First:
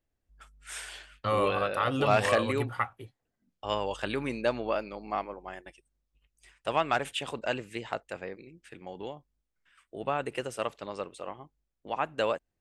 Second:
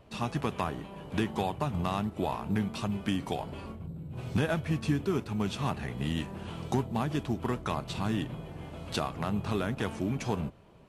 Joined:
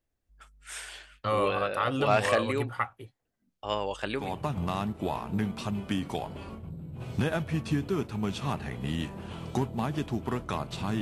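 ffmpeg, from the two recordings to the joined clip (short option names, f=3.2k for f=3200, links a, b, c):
-filter_complex "[0:a]apad=whole_dur=11.01,atrim=end=11.01,atrim=end=4.35,asetpts=PTS-STARTPTS[a];[1:a]atrim=start=1.32:end=8.18,asetpts=PTS-STARTPTS[b];[a][b]acrossfade=d=0.2:c1=tri:c2=tri"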